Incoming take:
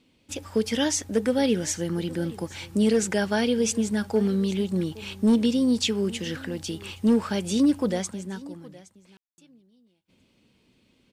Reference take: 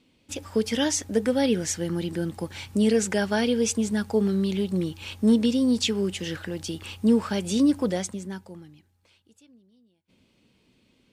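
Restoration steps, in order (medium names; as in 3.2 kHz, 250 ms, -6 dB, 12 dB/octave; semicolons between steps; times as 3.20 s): clip repair -14 dBFS; room tone fill 9.17–9.38 s; inverse comb 817 ms -20.5 dB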